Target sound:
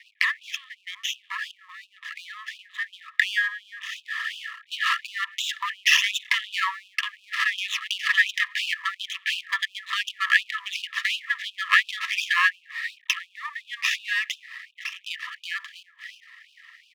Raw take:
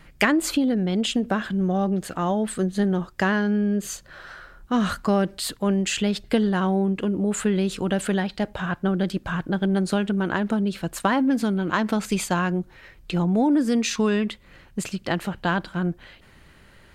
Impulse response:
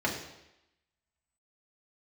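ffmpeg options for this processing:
-filter_complex "[0:a]asplit=2[link_01][link_02];[1:a]atrim=start_sample=2205[link_03];[link_02][link_03]afir=irnorm=-1:irlink=0,volume=-27.5dB[link_04];[link_01][link_04]amix=inputs=2:normalize=0,acompressor=threshold=-25dB:ratio=6,tiltshelf=frequency=970:gain=-6.5,aresample=8000,aresample=44100,aeval=exprs='max(val(0),0)':channel_layout=same,asuperstop=centerf=1500:order=12:qfactor=5.1,dynaudnorm=framelen=320:gausssize=21:maxgain=10.5dB,equalizer=frequency=1700:width=2:gain=12,afftfilt=real='re*gte(b*sr/1024,930*pow(2500/930,0.5+0.5*sin(2*PI*2.8*pts/sr)))':imag='im*gte(b*sr/1024,930*pow(2500/930,0.5+0.5*sin(2*PI*2.8*pts/sr)))':win_size=1024:overlap=0.75,volume=1.5dB"

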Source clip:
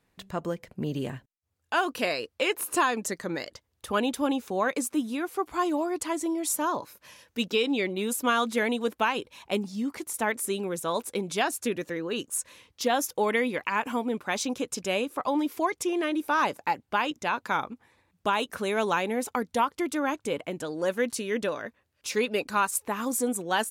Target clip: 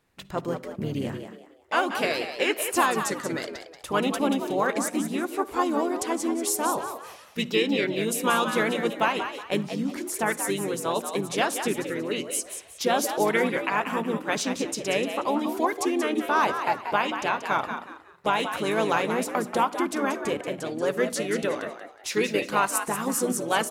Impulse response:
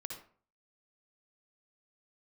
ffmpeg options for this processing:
-filter_complex "[0:a]bandreject=frequency=60:width_type=h:width=6,bandreject=frequency=120:width_type=h:width=6,bandreject=frequency=180:width_type=h:width=6,bandreject=frequency=240:width_type=h:width=6,bandreject=frequency=300:width_type=h:width=6,asplit=3[link_01][link_02][link_03];[link_02]asetrate=33038,aresample=44100,atempo=1.33484,volume=-7dB[link_04];[link_03]asetrate=37084,aresample=44100,atempo=1.18921,volume=-15dB[link_05];[link_01][link_04][link_05]amix=inputs=3:normalize=0,asplit=5[link_06][link_07][link_08][link_09][link_10];[link_07]adelay=183,afreqshift=82,volume=-8.5dB[link_11];[link_08]adelay=366,afreqshift=164,volume=-19dB[link_12];[link_09]adelay=549,afreqshift=246,volume=-29.4dB[link_13];[link_10]adelay=732,afreqshift=328,volume=-39.9dB[link_14];[link_06][link_11][link_12][link_13][link_14]amix=inputs=5:normalize=0,asplit=2[link_15][link_16];[1:a]atrim=start_sample=2205,asetrate=48510,aresample=44100[link_17];[link_16][link_17]afir=irnorm=-1:irlink=0,volume=-13.5dB[link_18];[link_15][link_18]amix=inputs=2:normalize=0"

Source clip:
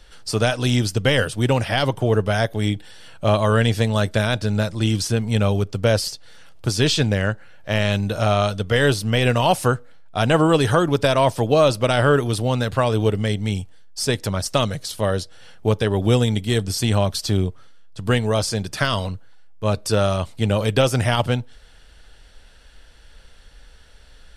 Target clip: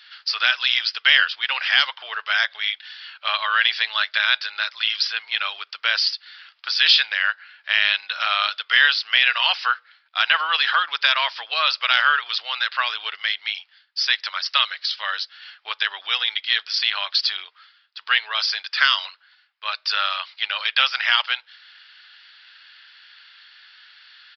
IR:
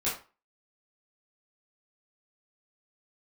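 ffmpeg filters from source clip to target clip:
-af "highpass=frequency=1400:width=0.5412,highpass=frequency=1400:width=1.3066,acontrast=59,aresample=11025,aresample=44100,volume=2.5dB"

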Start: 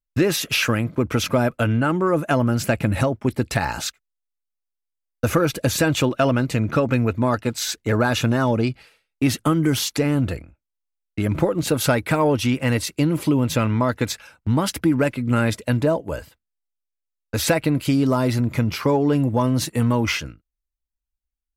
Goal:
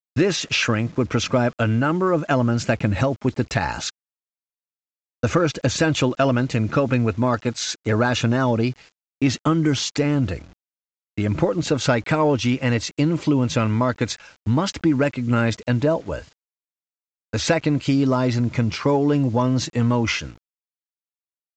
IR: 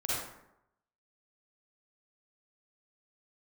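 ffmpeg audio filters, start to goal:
-af "acrusher=bits=7:mix=0:aa=0.000001,aresample=16000,aresample=44100"

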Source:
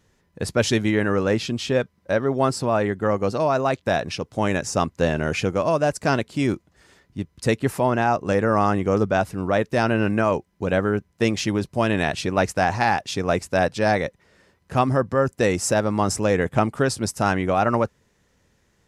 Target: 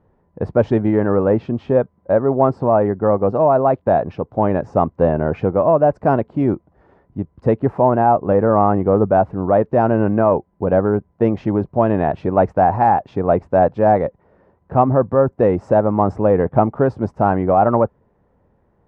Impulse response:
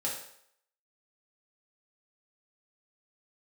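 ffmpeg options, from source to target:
-af "acontrast=34,lowpass=frequency=840:width_type=q:width=1.5,volume=-1dB"

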